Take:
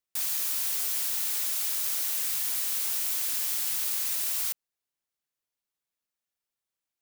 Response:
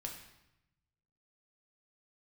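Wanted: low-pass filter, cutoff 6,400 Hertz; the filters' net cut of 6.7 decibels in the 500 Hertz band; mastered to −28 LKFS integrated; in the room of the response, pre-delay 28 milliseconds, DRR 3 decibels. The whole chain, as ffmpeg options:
-filter_complex "[0:a]lowpass=6400,equalizer=frequency=500:width_type=o:gain=-9,asplit=2[link_01][link_02];[1:a]atrim=start_sample=2205,adelay=28[link_03];[link_02][link_03]afir=irnorm=-1:irlink=0,volume=-1dB[link_04];[link_01][link_04]amix=inputs=2:normalize=0,volume=6.5dB"

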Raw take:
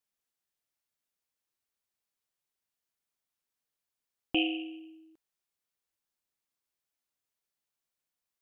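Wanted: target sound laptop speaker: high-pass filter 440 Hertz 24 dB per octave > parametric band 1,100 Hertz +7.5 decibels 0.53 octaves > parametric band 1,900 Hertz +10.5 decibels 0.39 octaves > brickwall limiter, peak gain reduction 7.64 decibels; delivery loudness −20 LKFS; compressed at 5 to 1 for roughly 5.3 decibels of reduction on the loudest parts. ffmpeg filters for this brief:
ffmpeg -i in.wav -af "acompressor=threshold=-29dB:ratio=5,highpass=frequency=440:width=0.5412,highpass=frequency=440:width=1.3066,equalizer=frequency=1100:width_type=o:width=0.53:gain=7.5,equalizer=frequency=1900:width_type=o:width=0.39:gain=10.5,volume=21.5dB,alimiter=limit=-7dB:level=0:latency=1" out.wav

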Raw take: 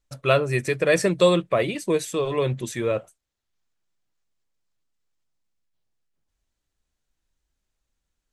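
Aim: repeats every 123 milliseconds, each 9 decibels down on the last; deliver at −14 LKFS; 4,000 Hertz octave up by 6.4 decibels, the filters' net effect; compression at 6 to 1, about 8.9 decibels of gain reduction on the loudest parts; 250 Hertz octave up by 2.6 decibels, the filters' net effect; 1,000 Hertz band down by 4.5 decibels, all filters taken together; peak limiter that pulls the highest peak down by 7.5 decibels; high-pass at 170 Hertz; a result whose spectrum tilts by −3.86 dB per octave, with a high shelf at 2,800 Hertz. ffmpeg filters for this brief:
ffmpeg -i in.wav -af "highpass=170,equalizer=frequency=250:width_type=o:gain=6.5,equalizer=frequency=1000:width_type=o:gain=-8,highshelf=frequency=2800:gain=5,equalizer=frequency=4000:width_type=o:gain=4.5,acompressor=threshold=-21dB:ratio=6,alimiter=limit=-18.5dB:level=0:latency=1,aecho=1:1:123|246|369|492:0.355|0.124|0.0435|0.0152,volume=14dB" out.wav

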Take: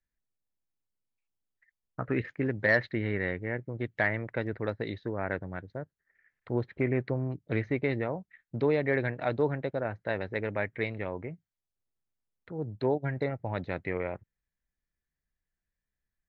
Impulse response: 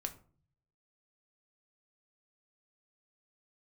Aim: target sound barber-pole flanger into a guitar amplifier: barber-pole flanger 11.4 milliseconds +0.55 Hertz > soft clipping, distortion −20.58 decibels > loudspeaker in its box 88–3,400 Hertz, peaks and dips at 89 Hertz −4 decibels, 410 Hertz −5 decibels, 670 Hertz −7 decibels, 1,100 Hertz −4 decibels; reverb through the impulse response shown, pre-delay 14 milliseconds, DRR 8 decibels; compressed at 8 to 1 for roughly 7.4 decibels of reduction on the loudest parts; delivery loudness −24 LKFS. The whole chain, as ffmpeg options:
-filter_complex "[0:a]acompressor=threshold=-28dB:ratio=8,asplit=2[link_01][link_02];[1:a]atrim=start_sample=2205,adelay=14[link_03];[link_02][link_03]afir=irnorm=-1:irlink=0,volume=-7dB[link_04];[link_01][link_04]amix=inputs=2:normalize=0,asplit=2[link_05][link_06];[link_06]adelay=11.4,afreqshift=0.55[link_07];[link_05][link_07]amix=inputs=2:normalize=1,asoftclip=threshold=-25dB,highpass=88,equalizer=frequency=89:width_type=q:width=4:gain=-4,equalizer=frequency=410:width_type=q:width=4:gain=-5,equalizer=frequency=670:width_type=q:width=4:gain=-7,equalizer=frequency=1100:width_type=q:width=4:gain=-4,lowpass=frequency=3400:width=0.5412,lowpass=frequency=3400:width=1.3066,volume=17dB"

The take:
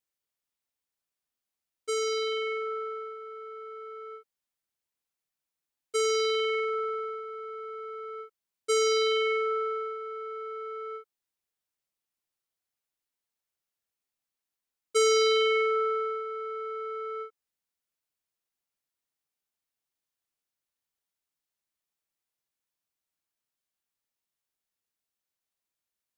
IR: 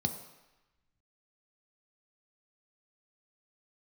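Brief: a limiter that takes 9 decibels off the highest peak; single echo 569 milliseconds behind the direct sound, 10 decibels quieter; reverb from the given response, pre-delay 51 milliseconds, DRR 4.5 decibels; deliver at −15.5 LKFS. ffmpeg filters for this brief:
-filter_complex "[0:a]alimiter=level_in=1dB:limit=-24dB:level=0:latency=1,volume=-1dB,aecho=1:1:569:0.316,asplit=2[link_01][link_02];[1:a]atrim=start_sample=2205,adelay=51[link_03];[link_02][link_03]afir=irnorm=-1:irlink=0,volume=-8.5dB[link_04];[link_01][link_04]amix=inputs=2:normalize=0,volume=17.5dB"

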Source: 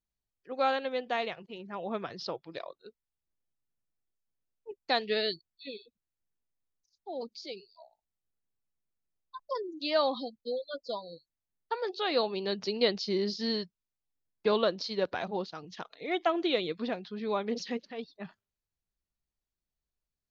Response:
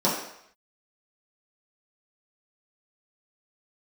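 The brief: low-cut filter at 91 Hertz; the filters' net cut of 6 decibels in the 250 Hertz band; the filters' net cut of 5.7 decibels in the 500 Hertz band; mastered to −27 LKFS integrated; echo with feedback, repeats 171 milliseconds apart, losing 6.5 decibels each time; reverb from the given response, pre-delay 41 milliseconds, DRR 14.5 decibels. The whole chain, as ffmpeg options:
-filter_complex "[0:a]highpass=91,equalizer=frequency=250:width_type=o:gain=-6,equalizer=frequency=500:width_type=o:gain=-5.5,aecho=1:1:171|342|513|684|855|1026:0.473|0.222|0.105|0.0491|0.0231|0.0109,asplit=2[link_01][link_02];[1:a]atrim=start_sample=2205,adelay=41[link_03];[link_02][link_03]afir=irnorm=-1:irlink=0,volume=-29.5dB[link_04];[link_01][link_04]amix=inputs=2:normalize=0,volume=8dB"

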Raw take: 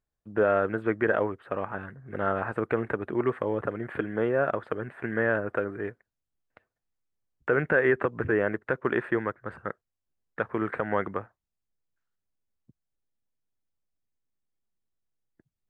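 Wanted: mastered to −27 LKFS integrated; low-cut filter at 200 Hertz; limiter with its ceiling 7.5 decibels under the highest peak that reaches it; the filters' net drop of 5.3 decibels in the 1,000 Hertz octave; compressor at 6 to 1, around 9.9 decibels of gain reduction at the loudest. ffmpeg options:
ffmpeg -i in.wav -af "highpass=200,equalizer=frequency=1000:width_type=o:gain=-8,acompressor=threshold=-32dB:ratio=6,volume=12.5dB,alimiter=limit=-13.5dB:level=0:latency=1" out.wav

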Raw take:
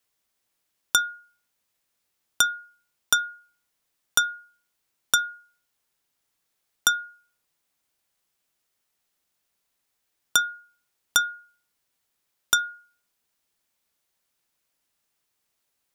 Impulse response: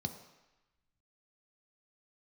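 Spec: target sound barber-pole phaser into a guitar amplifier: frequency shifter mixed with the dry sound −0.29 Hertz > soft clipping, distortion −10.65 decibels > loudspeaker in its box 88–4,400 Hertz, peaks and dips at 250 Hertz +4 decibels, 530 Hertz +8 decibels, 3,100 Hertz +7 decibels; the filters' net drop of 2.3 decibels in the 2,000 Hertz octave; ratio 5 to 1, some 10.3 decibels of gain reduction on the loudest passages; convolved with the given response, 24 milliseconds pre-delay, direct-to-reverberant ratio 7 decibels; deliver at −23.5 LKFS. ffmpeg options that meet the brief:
-filter_complex "[0:a]equalizer=frequency=2000:width_type=o:gain=-5,acompressor=threshold=-29dB:ratio=5,asplit=2[link_01][link_02];[1:a]atrim=start_sample=2205,adelay=24[link_03];[link_02][link_03]afir=irnorm=-1:irlink=0,volume=-7dB[link_04];[link_01][link_04]amix=inputs=2:normalize=0,asplit=2[link_05][link_06];[link_06]afreqshift=-0.29[link_07];[link_05][link_07]amix=inputs=2:normalize=1,asoftclip=threshold=-23dB,highpass=88,equalizer=frequency=250:width_type=q:width=4:gain=4,equalizer=frequency=530:width_type=q:width=4:gain=8,equalizer=frequency=3100:width_type=q:width=4:gain=7,lowpass=frequency=4400:width=0.5412,lowpass=frequency=4400:width=1.3066,volume=18dB"

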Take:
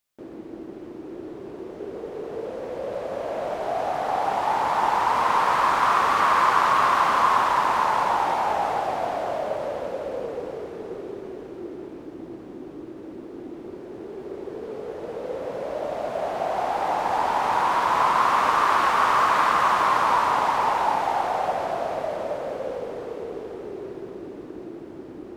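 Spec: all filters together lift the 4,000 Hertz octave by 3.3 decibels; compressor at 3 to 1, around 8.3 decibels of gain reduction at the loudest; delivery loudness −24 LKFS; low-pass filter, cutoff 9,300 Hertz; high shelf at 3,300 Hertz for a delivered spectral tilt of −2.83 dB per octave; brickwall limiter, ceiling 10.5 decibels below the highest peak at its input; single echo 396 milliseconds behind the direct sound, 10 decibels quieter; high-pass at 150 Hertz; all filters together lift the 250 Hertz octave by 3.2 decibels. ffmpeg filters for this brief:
ffmpeg -i in.wav -af "highpass=150,lowpass=9300,equalizer=frequency=250:width_type=o:gain=5,highshelf=frequency=3300:gain=-3,equalizer=frequency=4000:width_type=o:gain=6.5,acompressor=threshold=-27dB:ratio=3,alimiter=level_in=1dB:limit=-24dB:level=0:latency=1,volume=-1dB,aecho=1:1:396:0.316,volume=9.5dB" out.wav

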